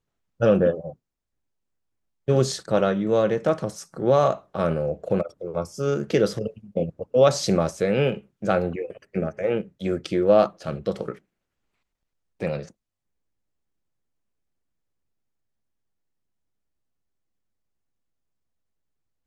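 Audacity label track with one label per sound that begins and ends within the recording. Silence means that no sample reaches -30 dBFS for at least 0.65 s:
2.280000	11.120000	sound
12.410000	12.620000	sound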